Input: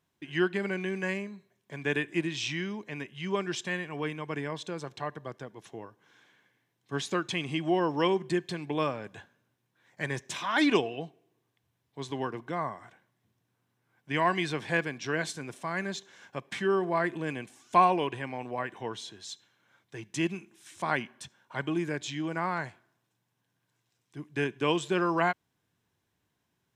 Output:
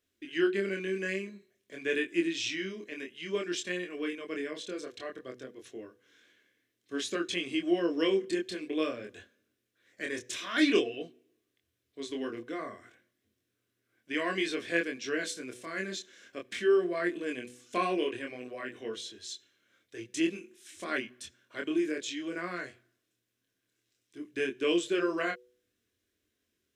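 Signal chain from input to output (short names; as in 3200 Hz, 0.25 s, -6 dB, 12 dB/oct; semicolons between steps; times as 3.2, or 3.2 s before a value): chorus 0.53 Hz, depth 4.1 ms; fixed phaser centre 360 Hz, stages 4; de-hum 123.3 Hz, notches 4; gain +4 dB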